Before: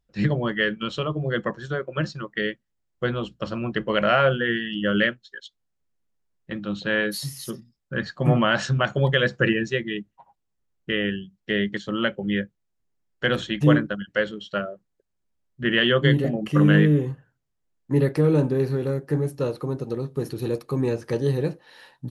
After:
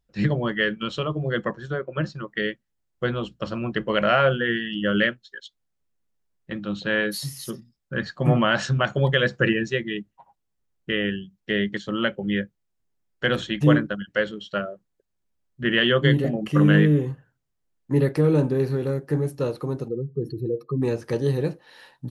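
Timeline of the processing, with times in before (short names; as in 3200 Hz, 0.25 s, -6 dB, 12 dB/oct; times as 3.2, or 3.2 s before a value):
1.53–2.28 high shelf 2700 Hz -7 dB
19.88–20.82 spectral contrast raised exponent 2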